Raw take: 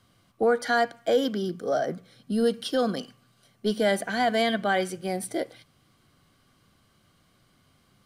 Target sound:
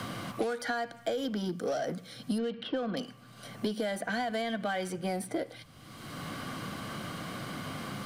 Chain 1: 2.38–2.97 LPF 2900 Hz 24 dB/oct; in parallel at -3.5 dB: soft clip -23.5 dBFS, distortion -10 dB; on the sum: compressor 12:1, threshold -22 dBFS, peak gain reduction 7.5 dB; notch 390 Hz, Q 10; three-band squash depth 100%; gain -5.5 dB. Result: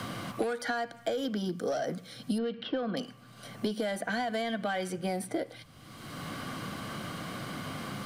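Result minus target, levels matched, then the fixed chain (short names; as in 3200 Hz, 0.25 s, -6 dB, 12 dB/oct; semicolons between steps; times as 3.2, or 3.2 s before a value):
soft clip: distortion -6 dB
2.38–2.97 LPF 2900 Hz 24 dB/oct; in parallel at -3.5 dB: soft clip -34 dBFS, distortion -4 dB; on the sum: compressor 12:1, threshold -22 dBFS, peak gain reduction 6.5 dB; notch 390 Hz, Q 10; three-band squash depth 100%; gain -5.5 dB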